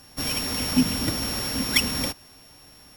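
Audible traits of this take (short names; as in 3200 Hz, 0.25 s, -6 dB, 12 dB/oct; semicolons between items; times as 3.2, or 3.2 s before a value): a buzz of ramps at a fixed pitch in blocks of 8 samples; Opus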